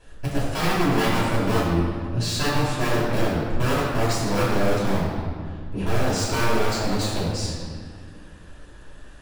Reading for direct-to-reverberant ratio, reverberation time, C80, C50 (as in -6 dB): -11.0 dB, 2.0 s, 0.5 dB, -1.0 dB